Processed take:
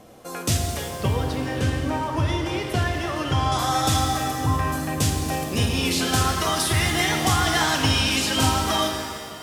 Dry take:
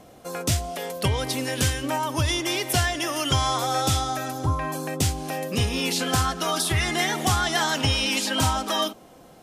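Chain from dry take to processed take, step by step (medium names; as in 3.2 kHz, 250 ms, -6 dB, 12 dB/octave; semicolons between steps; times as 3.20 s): 0.88–3.52 s: low-pass 1.4 kHz 6 dB/octave; pitch-shifted reverb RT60 2 s, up +7 st, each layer -8 dB, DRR 2.5 dB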